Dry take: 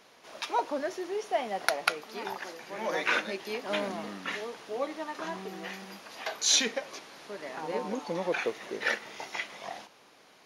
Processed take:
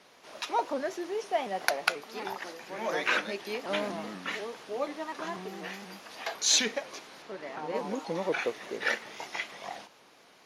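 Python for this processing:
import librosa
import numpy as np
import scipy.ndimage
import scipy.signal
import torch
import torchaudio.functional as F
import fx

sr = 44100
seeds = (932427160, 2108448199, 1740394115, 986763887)

y = fx.high_shelf(x, sr, hz=6700.0, db=-12.0, at=(7.22, 7.75))
y = fx.vibrato_shape(y, sr, shape='saw_up', rate_hz=4.1, depth_cents=100.0)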